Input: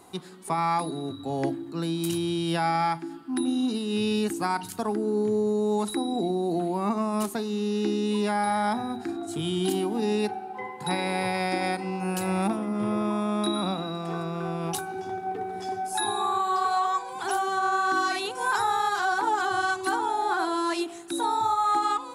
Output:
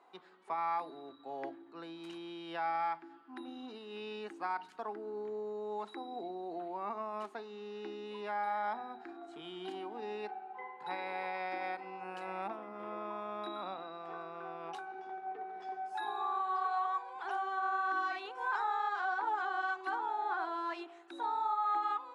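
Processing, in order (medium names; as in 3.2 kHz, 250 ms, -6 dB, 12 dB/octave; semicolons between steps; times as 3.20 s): band-pass 560–2300 Hz; trim -8 dB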